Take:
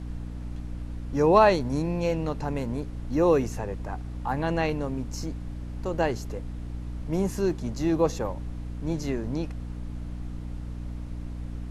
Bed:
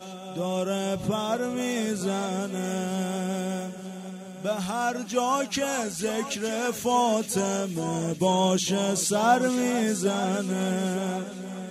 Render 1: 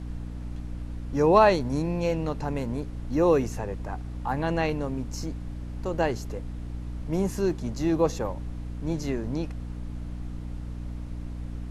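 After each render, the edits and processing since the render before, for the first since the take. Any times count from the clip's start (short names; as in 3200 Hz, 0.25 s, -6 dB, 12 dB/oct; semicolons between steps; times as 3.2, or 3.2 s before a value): nothing audible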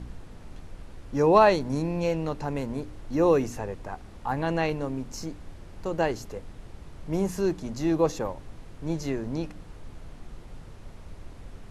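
de-hum 60 Hz, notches 5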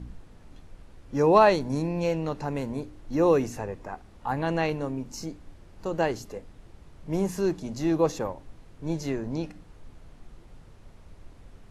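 noise print and reduce 6 dB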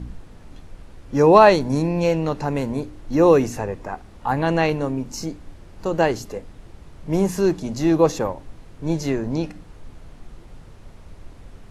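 gain +7 dB; limiter -1 dBFS, peak gain reduction 1 dB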